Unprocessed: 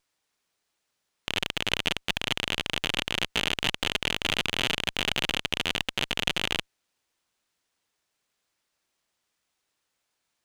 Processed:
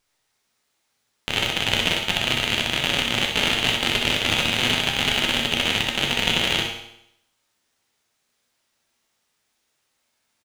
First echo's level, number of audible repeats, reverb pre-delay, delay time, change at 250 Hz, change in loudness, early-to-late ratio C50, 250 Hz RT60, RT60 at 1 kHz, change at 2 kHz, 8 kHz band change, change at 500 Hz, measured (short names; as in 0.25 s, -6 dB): -6.5 dB, 1, 9 ms, 63 ms, +8.0 dB, +7.0 dB, 3.0 dB, 0.75 s, 0.75 s, +7.0 dB, +7.0 dB, +7.0 dB